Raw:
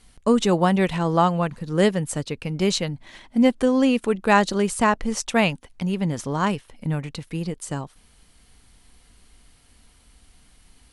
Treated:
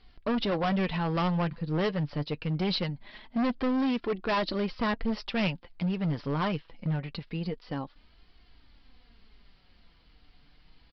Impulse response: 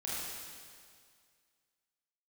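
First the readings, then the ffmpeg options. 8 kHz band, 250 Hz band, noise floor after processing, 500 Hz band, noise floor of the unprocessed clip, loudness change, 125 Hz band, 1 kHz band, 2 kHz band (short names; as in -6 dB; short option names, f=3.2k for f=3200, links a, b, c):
under -30 dB, -7.5 dB, -62 dBFS, -9.5 dB, -57 dBFS, -8.0 dB, -5.0 dB, -9.5 dB, -8.5 dB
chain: -af "flanger=delay=2.6:depth=4.4:regen=44:speed=0.24:shape=triangular,aresample=11025,asoftclip=type=hard:threshold=-24.5dB,aresample=44100"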